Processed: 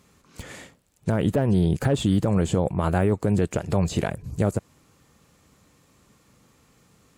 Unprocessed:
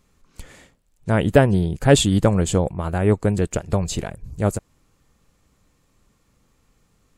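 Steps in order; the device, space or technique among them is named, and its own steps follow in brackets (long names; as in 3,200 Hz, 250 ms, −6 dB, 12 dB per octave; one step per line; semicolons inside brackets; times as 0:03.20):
podcast mastering chain (high-pass filter 88 Hz 12 dB per octave; de-essing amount 90%; downward compressor 3 to 1, threshold −20 dBFS, peak gain reduction 8.5 dB; brickwall limiter −18.5 dBFS, peak gain reduction 9 dB; level +6.5 dB; MP3 128 kbit/s 48,000 Hz)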